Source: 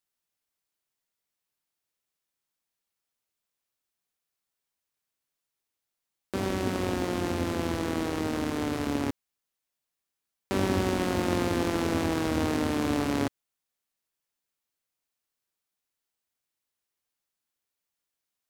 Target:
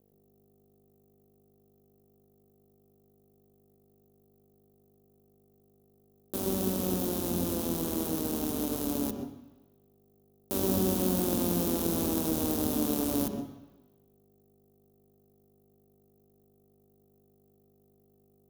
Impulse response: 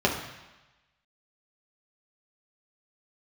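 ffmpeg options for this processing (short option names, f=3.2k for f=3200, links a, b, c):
-filter_complex "[0:a]aeval=exprs='val(0)+0.00708*(sin(2*PI*50*n/s)+sin(2*PI*2*50*n/s)/2+sin(2*PI*3*50*n/s)/3+sin(2*PI*4*50*n/s)/4+sin(2*PI*5*50*n/s)/5)':c=same,acrusher=bits=5:mix=0:aa=0.5,asplit=2[a][b];[b]equalizer=f=190:w=3.7:g=10.5[c];[1:a]atrim=start_sample=2205,adelay=123[d];[c][d]afir=irnorm=-1:irlink=0,volume=-21.5dB[e];[a][e]amix=inputs=2:normalize=0,aexciter=amount=12.2:drive=5.5:freq=6.5k,equalizer=f=125:t=o:w=1:g=-3,equalizer=f=250:t=o:w=1:g=4,equalizer=f=500:t=o:w=1:g=3,equalizer=f=2k:t=o:w=1:g=-11,equalizer=f=4k:t=o:w=1:g=11,equalizer=f=8k:t=o:w=1:g=-12,volume=-7.5dB"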